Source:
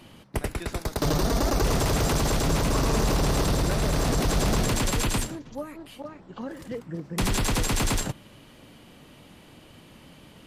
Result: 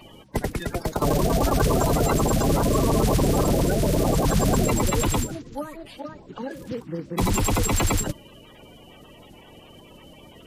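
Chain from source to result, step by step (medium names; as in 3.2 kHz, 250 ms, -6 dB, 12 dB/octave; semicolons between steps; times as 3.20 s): coarse spectral quantiser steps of 30 dB; trim +3.5 dB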